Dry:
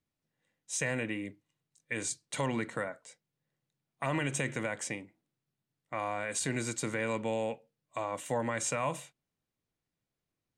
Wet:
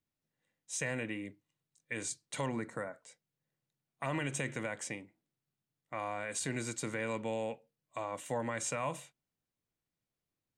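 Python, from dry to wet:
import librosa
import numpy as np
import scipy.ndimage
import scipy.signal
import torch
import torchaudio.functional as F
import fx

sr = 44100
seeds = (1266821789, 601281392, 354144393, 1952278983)

y = fx.peak_eq(x, sr, hz=3100.0, db=-14.0, octaves=0.75, at=(2.49, 2.94))
y = y * librosa.db_to_amplitude(-3.5)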